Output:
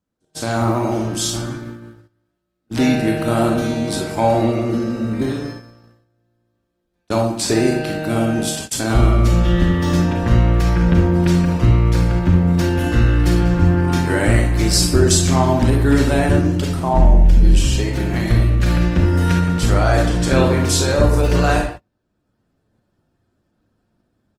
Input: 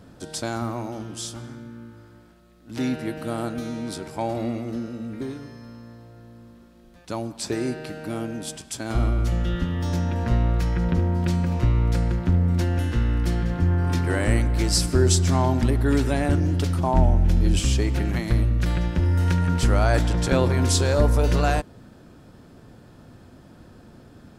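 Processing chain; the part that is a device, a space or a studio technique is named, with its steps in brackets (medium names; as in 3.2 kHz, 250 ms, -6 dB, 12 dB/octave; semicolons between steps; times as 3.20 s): speakerphone in a meeting room (reverberation RT60 0.40 s, pre-delay 29 ms, DRR 1.5 dB; speakerphone echo 120 ms, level -15 dB; level rider; gate -27 dBFS, range -32 dB; trim -1 dB; Opus 20 kbps 48 kHz)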